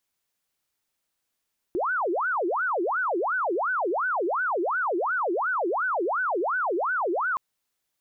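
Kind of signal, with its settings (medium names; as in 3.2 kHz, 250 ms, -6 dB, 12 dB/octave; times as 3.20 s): siren wail 335–1520 Hz 2.8 per s sine -23 dBFS 5.62 s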